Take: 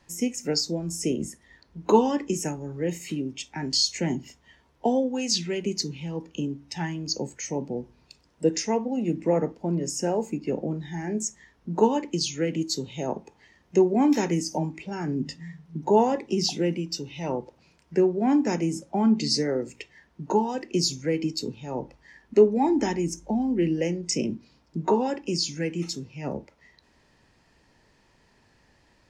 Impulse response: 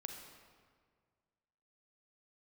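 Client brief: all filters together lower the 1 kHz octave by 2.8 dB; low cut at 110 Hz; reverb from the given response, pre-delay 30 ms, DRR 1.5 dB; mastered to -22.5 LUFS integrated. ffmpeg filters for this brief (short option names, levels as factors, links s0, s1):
-filter_complex "[0:a]highpass=110,equalizer=f=1000:t=o:g=-3.5,asplit=2[s0][s1];[1:a]atrim=start_sample=2205,adelay=30[s2];[s1][s2]afir=irnorm=-1:irlink=0,volume=1.12[s3];[s0][s3]amix=inputs=2:normalize=0,volume=1.33"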